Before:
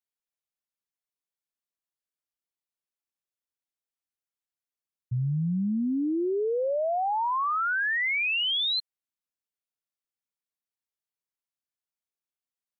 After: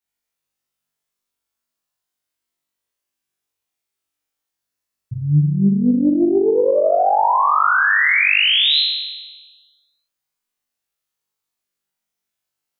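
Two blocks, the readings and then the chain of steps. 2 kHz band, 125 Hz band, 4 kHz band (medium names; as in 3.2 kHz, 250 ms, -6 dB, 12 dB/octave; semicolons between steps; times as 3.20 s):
+11.5 dB, +11.0 dB, +11.5 dB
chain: flutter echo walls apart 3.5 m, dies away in 1.3 s; loudspeaker Doppler distortion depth 0.21 ms; trim +4.5 dB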